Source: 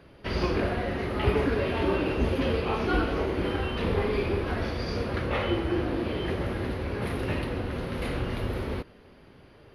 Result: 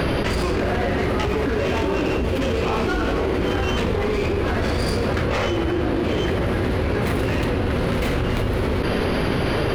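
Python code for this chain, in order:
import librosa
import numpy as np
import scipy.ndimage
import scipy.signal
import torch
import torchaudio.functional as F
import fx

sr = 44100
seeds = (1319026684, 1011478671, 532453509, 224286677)

y = fx.tracing_dist(x, sr, depth_ms=0.08)
y = fx.env_flatten(y, sr, amount_pct=100)
y = y * 10.0 ** (-2.0 / 20.0)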